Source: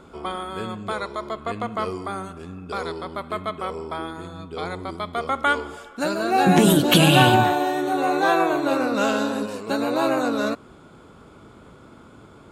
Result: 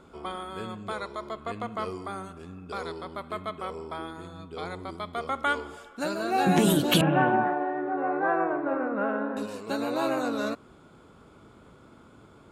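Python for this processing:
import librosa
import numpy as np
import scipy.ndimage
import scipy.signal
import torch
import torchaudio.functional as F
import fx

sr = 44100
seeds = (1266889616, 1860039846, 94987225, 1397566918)

y = fx.ellip_bandpass(x, sr, low_hz=160.0, high_hz=1800.0, order=3, stop_db=50, at=(7.01, 9.37))
y = F.gain(torch.from_numpy(y), -6.0).numpy()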